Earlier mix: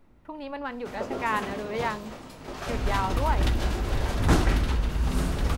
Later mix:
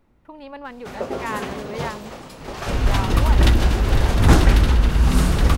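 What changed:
first sound +8.5 dB; second sound +10.0 dB; reverb: off

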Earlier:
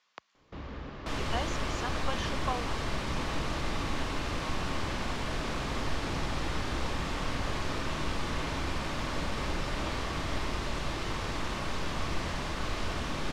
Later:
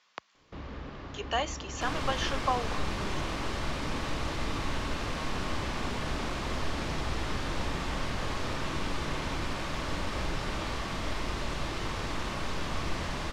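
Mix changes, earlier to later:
speech +5.5 dB; second sound: entry +0.75 s

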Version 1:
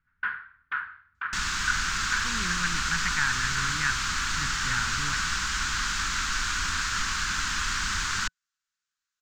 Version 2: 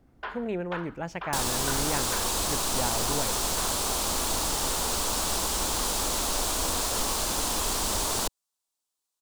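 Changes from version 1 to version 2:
speech: entry -1.90 s; first sound: add tilt +3 dB/oct; master: remove EQ curve 170 Hz 0 dB, 630 Hz -27 dB, 1500 Hz +14 dB, 3500 Hz 0 dB, 6900 Hz -1 dB, 10000 Hz -22 dB

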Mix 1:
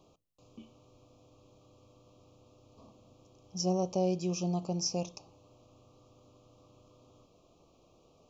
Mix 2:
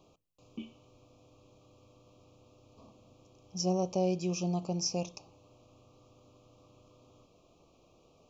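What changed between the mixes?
background +8.5 dB; master: add bell 2400 Hz +4 dB 0.45 oct

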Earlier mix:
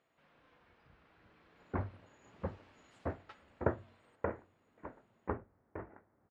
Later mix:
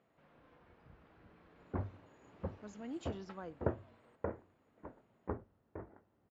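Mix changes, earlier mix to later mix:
speech: unmuted; second sound -6.5 dB; master: add tilt shelf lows +5.5 dB, about 1300 Hz

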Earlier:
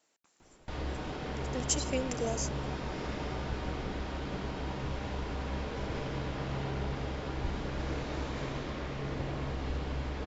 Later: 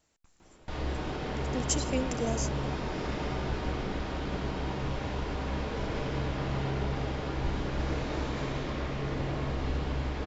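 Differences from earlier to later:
speech: remove HPF 290 Hz 12 dB/oct; background: send +6.0 dB

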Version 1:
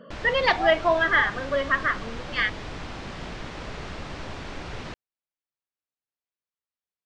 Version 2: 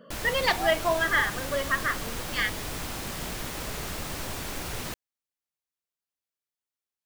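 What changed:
speech -4.5 dB; master: remove Gaussian blur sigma 1.8 samples

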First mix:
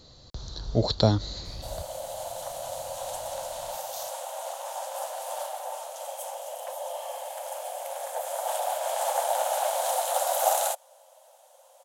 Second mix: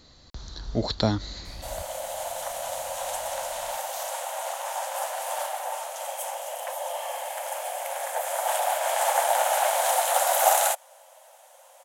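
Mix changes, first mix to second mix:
first sound +5.0 dB; master: add graphic EQ 125/250/500/2000/4000 Hz -6/+3/-5/+7/-3 dB

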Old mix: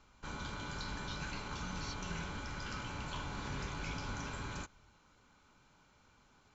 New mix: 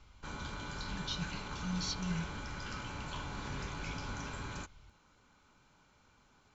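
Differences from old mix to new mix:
speech +5.5 dB; reverb: on, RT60 0.70 s

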